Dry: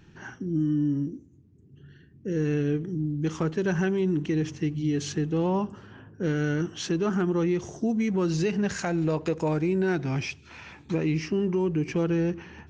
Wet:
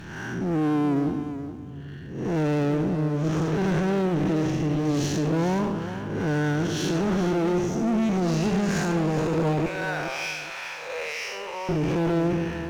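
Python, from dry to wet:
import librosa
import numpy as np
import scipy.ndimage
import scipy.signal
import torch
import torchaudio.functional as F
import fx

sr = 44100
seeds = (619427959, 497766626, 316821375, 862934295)

y = fx.spec_blur(x, sr, span_ms=207.0)
y = fx.ellip_highpass(y, sr, hz=520.0, order=4, stop_db=40, at=(9.66, 11.69))
y = fx.power_curve(y, sr, exponent=0.7)
y = fx.clip_asym(y, sr, top_db=-28.5, bottom_db=-23.0)
y = fx.echo_feedback(y, sr, ms=419, feedback_pct=23, wet_db=-10.5)
y = y * 10.0 ** (4.0 / 20.0)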